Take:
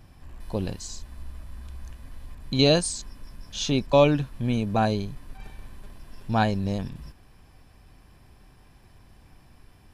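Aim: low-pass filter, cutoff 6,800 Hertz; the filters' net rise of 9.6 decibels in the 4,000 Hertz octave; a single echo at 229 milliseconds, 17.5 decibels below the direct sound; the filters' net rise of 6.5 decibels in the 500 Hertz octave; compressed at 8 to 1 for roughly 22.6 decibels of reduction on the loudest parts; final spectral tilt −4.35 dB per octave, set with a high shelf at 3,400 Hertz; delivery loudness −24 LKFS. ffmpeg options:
ffmpeg -i in.wav -af "lowpass=6800,equalizer=frequency=500:width_type=o:gain=7.5,highshelf=frequency=3400:gain=4.5,equalizer=frequency=4000:width_type=o:gain=8,acompressor=threshold=-32dB:ratio=8,aecho=1:1:229:0.133,volume=14dB" out.wav

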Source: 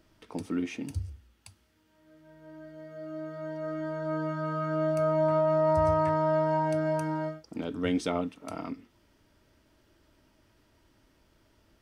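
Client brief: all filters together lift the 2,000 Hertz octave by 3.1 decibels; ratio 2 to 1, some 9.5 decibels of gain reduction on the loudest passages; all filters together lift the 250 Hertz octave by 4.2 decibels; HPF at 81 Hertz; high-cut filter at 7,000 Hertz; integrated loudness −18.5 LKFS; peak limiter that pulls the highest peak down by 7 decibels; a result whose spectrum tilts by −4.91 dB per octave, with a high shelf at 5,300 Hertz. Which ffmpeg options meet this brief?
ffmpeg -i in.wav -af "highpass=81,lowpass=7000,equalizer=frequency=250:width_type=o:gain=5.5,equalizer=frequency=2000:width_type=o:gain=3.5,highshelf=frequency=5300:gain=4.5,acompressor=threshold=-37dB:ratio=2,volume=19.5dB,alimiter=limit=-9dB:level=0:latency=1" out.wav

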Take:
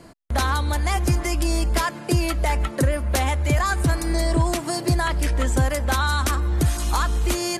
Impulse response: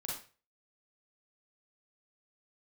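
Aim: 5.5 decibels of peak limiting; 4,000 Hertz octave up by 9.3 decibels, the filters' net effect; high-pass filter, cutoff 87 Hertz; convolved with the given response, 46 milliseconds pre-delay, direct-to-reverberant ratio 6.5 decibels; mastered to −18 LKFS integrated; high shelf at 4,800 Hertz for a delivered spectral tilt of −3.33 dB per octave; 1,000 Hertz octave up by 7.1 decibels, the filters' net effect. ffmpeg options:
-filter_complex "[0:a]highpass=87,equalizer=frequency=1000:width_type=o:gain=8,equalizer=frequency=4000:width_type=o:gain=9,highshelf=frequency=4800:gain=3.5,alimiter=limit=-9.5dB:level=0:latency=1,asplit=2[link_01][link_02];[1:a]atrim=start_sample=2205,adelay=46[link_03];[link_02][link_03]afir=irnorm=-1:irlink=0,volume=-7dB[link_04];[link_01][link_04]amix=inputs=2:normalize=0,volume=2.5dB"

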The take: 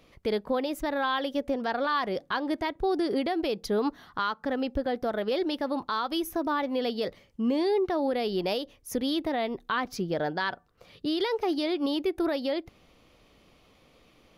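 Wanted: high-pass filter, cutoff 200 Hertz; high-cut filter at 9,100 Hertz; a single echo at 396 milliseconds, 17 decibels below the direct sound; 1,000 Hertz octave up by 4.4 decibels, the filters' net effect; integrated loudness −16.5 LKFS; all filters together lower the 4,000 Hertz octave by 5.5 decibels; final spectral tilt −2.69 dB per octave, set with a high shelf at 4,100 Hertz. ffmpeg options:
ffmpeg -i in.wav -af "highpass=200,lowpass=9100,equalizer=frequency=1000:width_type=o:gain=6,equalizer=frequency=4000:width_type=o:gain=-5.5,highshelf=frequency=4100:gain=-3.5,aecho=1:1:396:0.141,volume=11.5dB" out.wav

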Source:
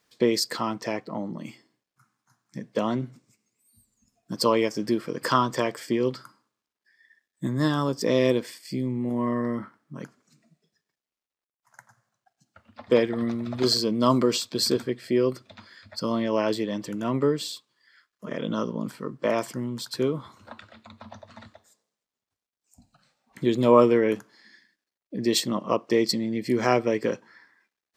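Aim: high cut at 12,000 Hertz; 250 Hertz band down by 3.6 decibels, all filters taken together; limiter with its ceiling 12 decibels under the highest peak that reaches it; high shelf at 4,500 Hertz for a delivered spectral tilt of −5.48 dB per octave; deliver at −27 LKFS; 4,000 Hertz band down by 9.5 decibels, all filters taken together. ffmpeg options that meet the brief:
ffmpeg -i in.wav -af "lowpass=12000,equalizer=frequency=250:width_type=o:gain=-4.5,equalizer=frequency=4000:width_type=o:gain=-7.5,highshelf=frequency=4500:gain=-7,volume=4.5dB,alimiter=limit=-14dB:level=0:latency=1" out.wav

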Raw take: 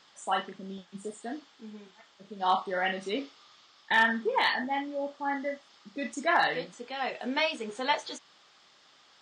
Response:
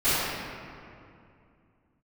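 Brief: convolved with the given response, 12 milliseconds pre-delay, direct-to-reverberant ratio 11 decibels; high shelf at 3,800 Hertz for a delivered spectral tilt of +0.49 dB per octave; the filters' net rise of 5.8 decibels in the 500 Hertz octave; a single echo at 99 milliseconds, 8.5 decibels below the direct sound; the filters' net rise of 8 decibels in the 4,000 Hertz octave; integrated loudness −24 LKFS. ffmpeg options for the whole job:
-filter_complex "[0:a]equalizer=frequency=500:width_type=o:gain=7,highshelf=frequency=3800:gain=3,equalizer=frequency=4000:width_type=o:gain=8.5,aecho=1:1:99:0.376,asplit=2[link_01][link_02];[1:a]atrim=start_sample=2205,adelay=12[link_03];[link_02][link_03]afir=irnorm=-1:irlink=0,volume=-28.5dB[link_04];[link_01][link_04]amix=inputs=2:normalize=0,volume=1.5dB"

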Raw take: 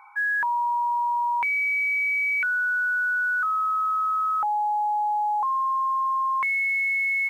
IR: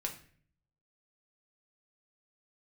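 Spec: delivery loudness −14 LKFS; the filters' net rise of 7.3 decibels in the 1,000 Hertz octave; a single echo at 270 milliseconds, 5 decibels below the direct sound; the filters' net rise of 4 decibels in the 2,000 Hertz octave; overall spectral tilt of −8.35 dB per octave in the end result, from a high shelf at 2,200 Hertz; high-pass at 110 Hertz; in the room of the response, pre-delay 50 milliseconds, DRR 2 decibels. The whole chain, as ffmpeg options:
-filter_complex "[0:a]highpass=110,equalizer=frequency=1000:width_type=o:gain=8.5,equalizer=frequency=2000:width_type=o:gain=7,highshelf=frequency=2200:gain=-9,aecho=1:1:270:0.562,asplit=2[link_01][link_02];[1:a]atrim=start_sample=2205,adelay=50[link_03];[link_02][link_03]afir=irnorm=-1:irlink=0,volume=-3dB[link_04];[link_01][link_04]amix=inputs=2:normalize=0"

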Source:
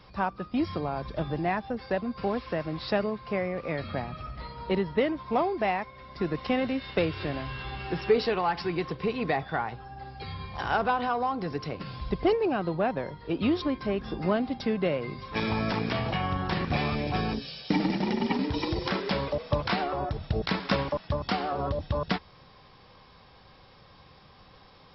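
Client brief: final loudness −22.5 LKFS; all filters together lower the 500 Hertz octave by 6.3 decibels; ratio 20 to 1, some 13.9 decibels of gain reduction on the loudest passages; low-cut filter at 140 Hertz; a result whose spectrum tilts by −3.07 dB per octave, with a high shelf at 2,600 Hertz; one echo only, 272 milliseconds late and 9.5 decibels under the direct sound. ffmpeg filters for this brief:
ffmpeg -i in.wav -af "highpass=140,equalizer=frequency=500:width_type=o:gain=-8.5,highshelf=frequency=2600:gain=6.5,acompressor=threshold=-37dB:ratio=20,aecho=1:1:272:0.335,volume=18.5dB" out.wav

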